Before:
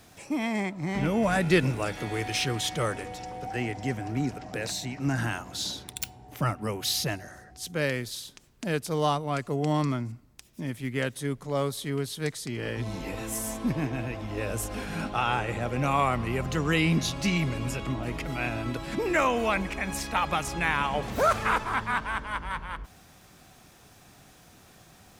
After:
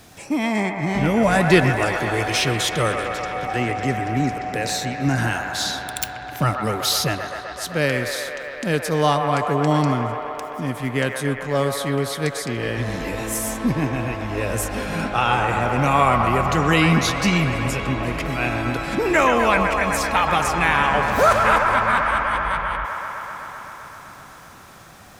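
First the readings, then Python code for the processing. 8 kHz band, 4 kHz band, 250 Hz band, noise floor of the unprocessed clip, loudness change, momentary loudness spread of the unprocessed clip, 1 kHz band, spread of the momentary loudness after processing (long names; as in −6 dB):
+7.0 dB, +7.5 dB, +7.0 dB, −55 dBFS, +8.5 dB, 10 LU, +10.0 dB, 11 LU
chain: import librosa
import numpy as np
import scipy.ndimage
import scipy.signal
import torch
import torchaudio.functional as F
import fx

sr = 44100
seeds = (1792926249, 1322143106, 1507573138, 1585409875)

y = fx.echo_wet_bandpass(x, sr, ms=128, feedback_pct=84, hz=1100.0, wet_db=-5.0)
y = y * librosa.db_to_amplitude(7.0)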